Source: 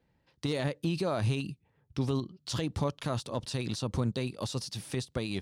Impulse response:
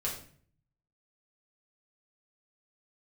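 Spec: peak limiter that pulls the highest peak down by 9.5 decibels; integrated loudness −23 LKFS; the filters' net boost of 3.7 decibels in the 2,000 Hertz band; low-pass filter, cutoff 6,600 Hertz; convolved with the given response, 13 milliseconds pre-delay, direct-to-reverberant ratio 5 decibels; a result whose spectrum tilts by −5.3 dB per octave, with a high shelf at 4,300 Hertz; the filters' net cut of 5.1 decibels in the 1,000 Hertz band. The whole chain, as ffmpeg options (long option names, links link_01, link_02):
-filter_complex "[0:a]lowpass=6600,equalizer=frequency=1000:width_type=o:gain=-9,equalizer=frequency=2000:width_type=o:gain=8.5,highshelf=frequency=4300:gain=-5.5,alimiter=level_in=5dB:limit=-24dB:level=0:latency=1,volume=-5dB,asplit=2[link_01][link_02];[1:a]atrim=start_sample=2205,adelay=13[link_03];[link_02][link_03]afir=irnorm=-1:irlink=0,volume=-8.5dB[link_04];[link_01][link_04]amix=inputs=2:normalize=0,volume=15dB"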